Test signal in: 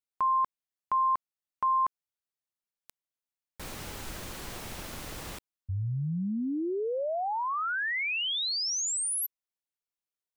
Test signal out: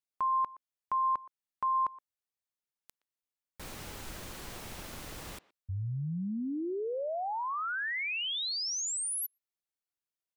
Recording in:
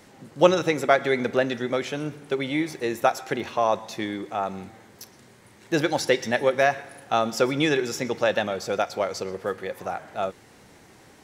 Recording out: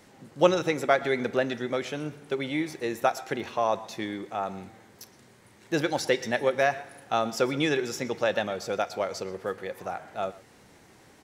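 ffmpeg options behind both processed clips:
ffmpeg -i in.wav -filter_complex "[0:a]asplit=2[link_01][link_02];[link_02]adelay=120,highpass=300,lowpass=3400,asoftclip=type=hard:threshold=-10.5dB,volume=-20dB[link_03];[link_01][link_03]amix=inputs=2:normalize=0,volume=-3.5dB" out.wav

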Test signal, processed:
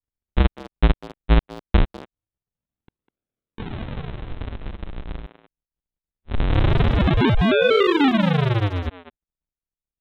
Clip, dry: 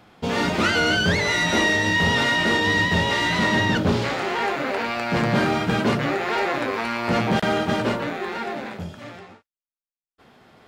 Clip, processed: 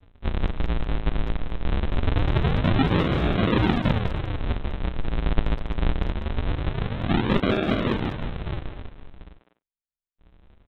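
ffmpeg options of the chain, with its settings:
ffmpeg -i in.wav -filter_complex "[0:a]lowshelf=frequency=91:gain=-9.5,aresample=8000,acrusher=samples=41:mix=1:aa=0.000001:lfo=1:lforange=65.6:lforate=0.23,aresample=44100,asplit=2[link_01][link_02];[link_02]adelay=200,highpass=300,lowpass=3400,asoftclip=type=hard:threshold=-16.5dB,volume=-9dB[link_03];[link_01][link_03]amix=inputs=2:normalize=0" out.wav

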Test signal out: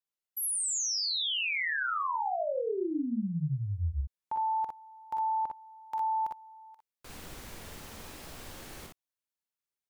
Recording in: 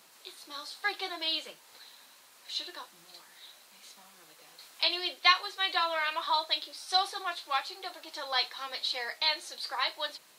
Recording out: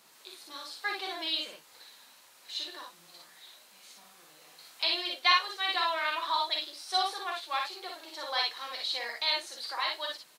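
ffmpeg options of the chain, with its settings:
ffmpeg -i in.wav -af "aecho=1:1:46|59:0.473|0.668,volume=-2.5dB" out.wav

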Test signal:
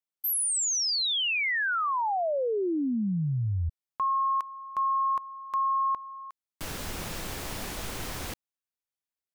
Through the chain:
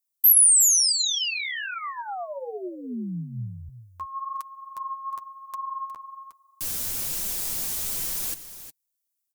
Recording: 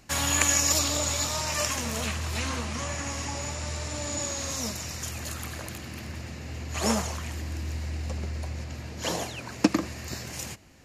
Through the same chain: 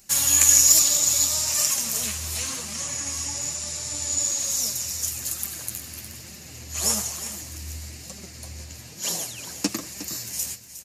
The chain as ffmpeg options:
ffmpeg -i in.wav -filter_complex "[0:a]tiltshelf=frequency=760:gain=4.5,acrossover=split=5000[link_01][link_02];[link_02]acontrast=39[link_03];[link_01][link_03]amix=inputs=2:normalize=0,flanger=delay=5:depth=6.6:regen=20:speed=1.1:shape=sinusoidal,asplit=2[link_04][link_05];[link_05]aecho=0:1:361:0.237[link_06];[link_04][link_06]amix=inputs=2:normalize=0,crystalizer=i=9.5:c=0,volume=-7dB" out.wav

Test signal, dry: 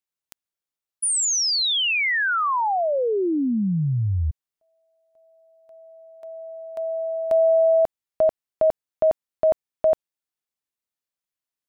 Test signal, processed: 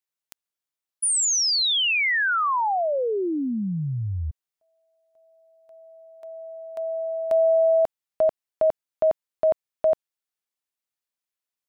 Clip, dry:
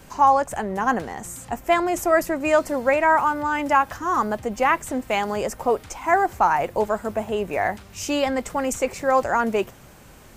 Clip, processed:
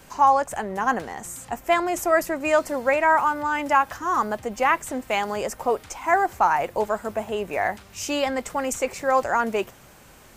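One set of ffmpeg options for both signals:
ffmpeg -i in.wav -af "lowshelf=frequency=390:gain=-5.5" out.wav

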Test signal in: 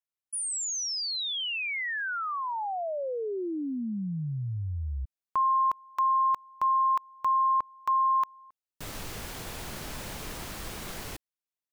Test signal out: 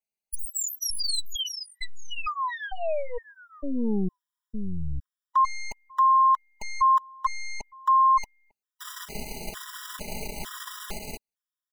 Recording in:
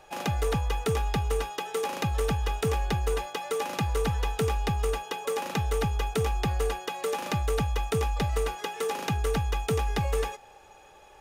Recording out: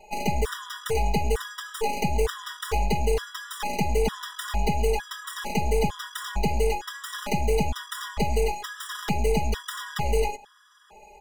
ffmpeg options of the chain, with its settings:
ffmpeg -i in.wav -af "aeval=exprs='0.112*(cos(1*acos(clip(val(0)/0.112,-1,1)))-cos(1*PI/2))+0.0178*(cos(8*acos(clip(val(0)/0.112,-1,1)))-cos(8*PI/2))':channel_layout=same,aecho=1:1:4.8:1,afftfilt=real='re*gt(sin(2*PI*1.1*pts/sr)*(1-2*mod(floor(b*sr/1024/980),2)),0)':imag='im*gt(sin(2*PI*1.1*pts/sr)*(1-2*mod(floor(b*sr/1024/980),2)),0)':win_size=1024:overlap=0.75" out.wav

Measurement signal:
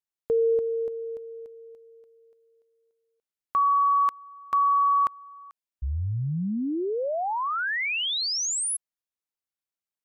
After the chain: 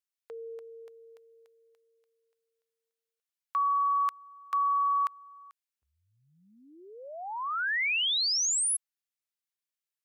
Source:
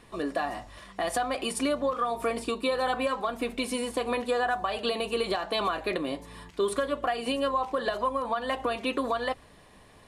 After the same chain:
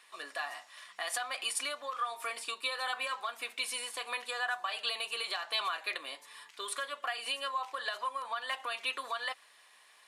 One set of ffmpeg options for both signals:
ffmpeg -i in.wav -af "highpass=1400" out.wav

